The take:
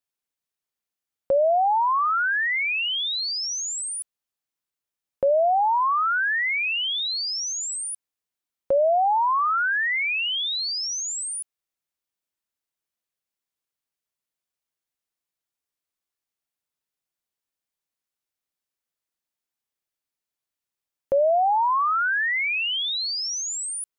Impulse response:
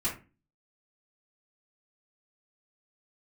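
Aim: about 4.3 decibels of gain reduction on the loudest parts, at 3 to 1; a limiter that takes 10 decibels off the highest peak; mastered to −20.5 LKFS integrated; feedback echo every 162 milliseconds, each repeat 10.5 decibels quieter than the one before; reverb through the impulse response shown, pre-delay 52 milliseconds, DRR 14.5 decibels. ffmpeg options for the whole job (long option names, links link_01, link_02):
-filter_complex "[0:a]acompressor=threshold=-24dB:ratio=3,alimiter=level_in=1.5dB:limit=-24dB:level=0:latency=1,volume=-1.5dB,aecho=1:1:162|324|486:0.299|0.0896|0.0269,asplit=2[link_01][link_02];[1:a]atrim=start_sample=2205,adelay=52[link_03];[link_02][link_03]afir=irnorm=-1:irlink=0,volume=-20.5dB[link_04];[link_01][link_04]amix=inputs=2:normalize=0,volume=6dB"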